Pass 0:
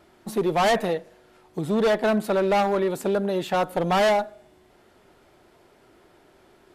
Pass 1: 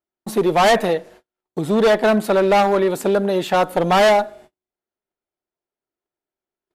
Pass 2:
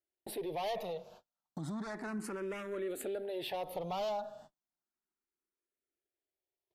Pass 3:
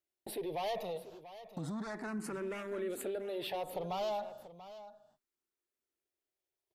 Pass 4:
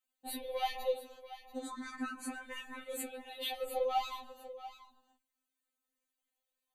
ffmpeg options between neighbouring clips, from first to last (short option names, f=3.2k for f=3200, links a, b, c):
-af "agate=range=-42dB:threshold=-49dB:ratio=16:detection=peak,equalizer=f=98:t=o:w=1.7:g=-4.5,volume=6.5dB"
-filter_complex "[0:a]alimiter=limit=-18.5dB:level=0:latency=1:release=47,acompressor=threshold=-32dB:ratio=2.5,asplit=2[a][b];[b]afreqshift=0.33[c];[a][c]amix=inputs=2:normalize=1,volume=-5dB"
-af "aecho=1:1:687:0.188"
-af "asuperstop=centerf=5300:order=4:qfactor=4.7,afftfilt=real='re*3.46*eq(mod(b,12),0)':imag='im*3.46*eq(mod(b,12),0)':win_size=2048:overlap=0.75,volume=6dB"